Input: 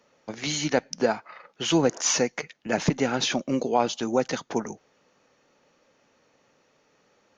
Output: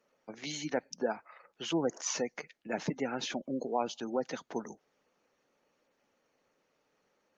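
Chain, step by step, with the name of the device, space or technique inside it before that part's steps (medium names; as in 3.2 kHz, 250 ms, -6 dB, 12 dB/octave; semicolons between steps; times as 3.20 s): noise-suppressed video call (high-pass 160 Hz 12 dB/octave; spectral gate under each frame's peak -25 dB strong; trim -9 dB; Opus 24 kbps 48 kHz)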